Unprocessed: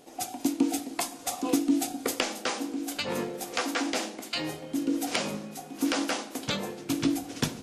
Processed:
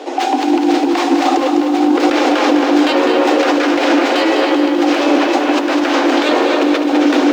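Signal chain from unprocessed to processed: tracing distortion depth 0.39 ms; soft clip -24.5 dBFS, distortion -11 dB; steep high-pass 250 Hz 96 dB/oct; tape echo 0.281 s, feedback 81%, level -8 dB, low-pass 3500 Hz; speed mistake 24 fps film run at 25 fps; negative-ratio compressor -36 dBFS, ratio -1; air absorption 170 m; maximiser +28 dB; lo-fi delay 0.204 s, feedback 55%, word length 7-bit, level -6.5 dB; gain -4 dB

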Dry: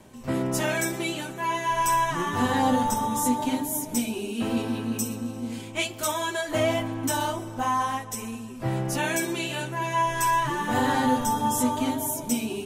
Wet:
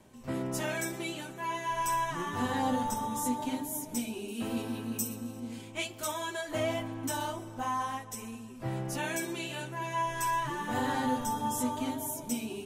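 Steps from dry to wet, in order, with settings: 4.28–5.4 high shelf 11000 Hz +12 dB; gain -7.5 dB

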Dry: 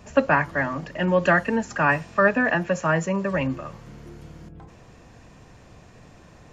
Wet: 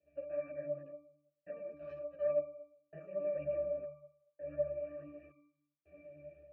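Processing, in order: reverse delay 0.102 s, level -5 dB; delay with a stepping band-pass 0.328 s, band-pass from 190 Hz, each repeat 0.7 oct, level -2.5 dB; AGC gain up to 15 dB; vowel filter e; step gate "xxxxx..." 82 bpm -60 dB; in parallel at -2 dB: compressor, threshold -34 dBFS, peak gain reduction 17 dB; 1.73–2.23 on the sum: power-law curve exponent 2; octave resonator D, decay 0.73 s; ensemble effect; gain +8.5 dB

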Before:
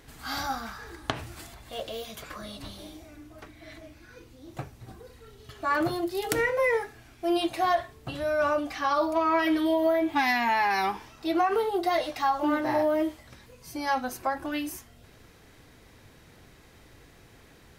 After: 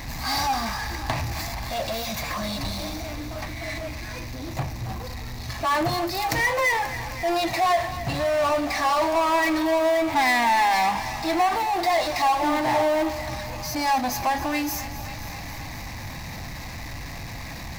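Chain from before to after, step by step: fixed phaser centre 2100 Hz, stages 8; power-law curve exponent 0.5; thinning echo 0.267 s, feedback 79%, high-pass 310 Hz, level -14 dB

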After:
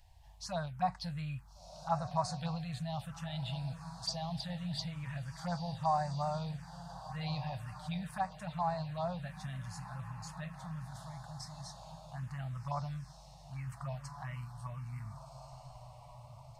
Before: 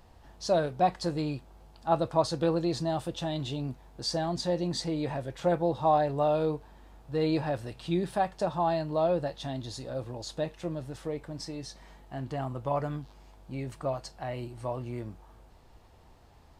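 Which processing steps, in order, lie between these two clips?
Chebyshev band-stop 150–900 Hz, order 2; diffused feedback echo 1.437 s, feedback 46%, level -9.5 dB; envelope phaser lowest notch 190 Hz, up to 3200 Hz, full sweep at -28 dBFS; gain -2 dB

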